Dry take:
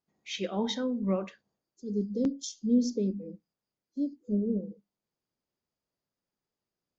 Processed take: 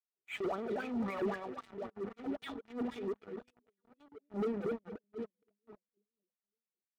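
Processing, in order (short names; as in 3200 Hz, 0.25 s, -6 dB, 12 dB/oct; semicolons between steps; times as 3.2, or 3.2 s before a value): tracing distortion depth 0.03 ms; rotary speaker horn 0.6 Hz; LPC vocoder at 8 kHz pitch kept; 1.89–4.34 tilt +4.5 dB/oct; echo with dull and thin repeats by turns 0.233 s, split 1100 Hz, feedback 60%, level -8.5 dB; wah 3.8 Hz 360–2400 Hz, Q 7.5; sample leveller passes 5; transient shaper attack -8 dB, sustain +5 dB; high shelf 3000 Hz -10 dB; notch comb 530 Hz; gain +5.5 dB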